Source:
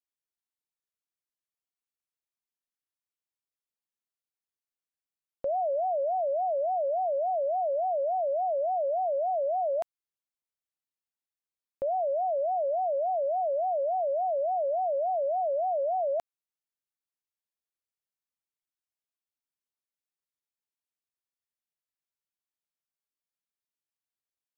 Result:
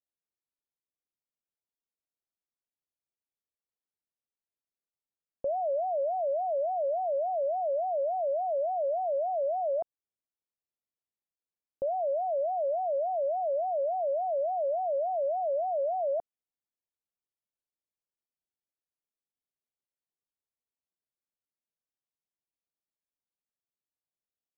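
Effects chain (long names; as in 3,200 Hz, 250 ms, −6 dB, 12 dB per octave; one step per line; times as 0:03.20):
Chebyshev low-pass filter 620 Hz, order 2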